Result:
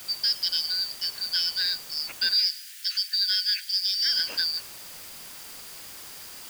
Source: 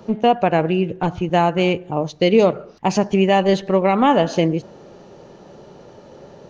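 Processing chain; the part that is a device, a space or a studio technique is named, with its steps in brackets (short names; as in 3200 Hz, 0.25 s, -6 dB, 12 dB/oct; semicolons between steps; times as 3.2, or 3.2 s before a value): split-band scrambled radio (four-band scrambler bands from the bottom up 4321; BPF 310–3200 Hz; white noise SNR 14 dB); 2.34–4.06 elliptic high-pass 1600 Hz, stop band 50 dB; gain -2 dB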